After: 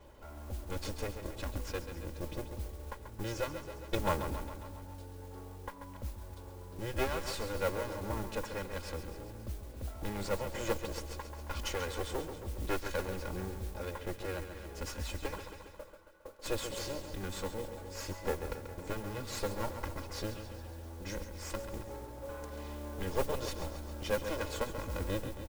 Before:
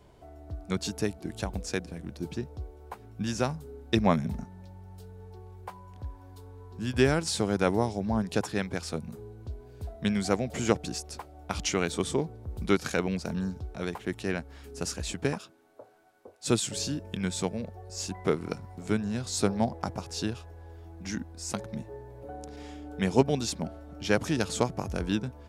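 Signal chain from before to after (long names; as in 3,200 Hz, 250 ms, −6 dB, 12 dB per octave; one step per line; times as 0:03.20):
lower of the sound and its delayed copy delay 2 ms
high-shelf EQ 4,900 Hz −11.5 dB
comb filter 3.6 ms, depth 53%
on a send: repeating echo 136 ms, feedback 54%, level −10 dB
on the sum: noise that follows the level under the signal 17 dB
in parallel at +3 dB: downward compressor, threshold −43 dBFS, peak gain reduction 20.5 dB
on the sum: level −6 dB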